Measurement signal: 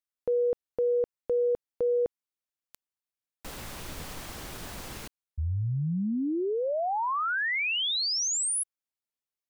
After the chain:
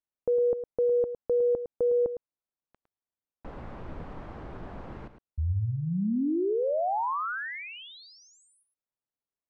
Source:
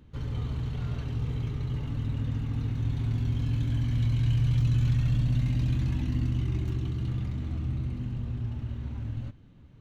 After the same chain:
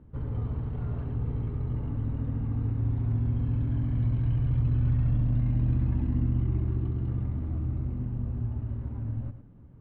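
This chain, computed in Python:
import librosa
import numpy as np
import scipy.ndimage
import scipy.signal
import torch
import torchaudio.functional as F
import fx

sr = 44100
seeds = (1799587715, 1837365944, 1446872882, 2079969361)

y = fx.dynamic_eq(x, sr, hz=140.0, q=3.5, threshold_db=-39.0, ratio=4.0, max_db=-5)
y = scipy.signal.sosfilt(scipy.signal.butter(2, 1100.0, 'lowpass', fs=sr, output='sos'), y)
y = y + 10.0 ** (-10.5 / 20.0) * np.pad(y, (int(108 * sr / 1000.0), 0))[:len(y)]
y = y * librosa.db_to_amplitude(1.5)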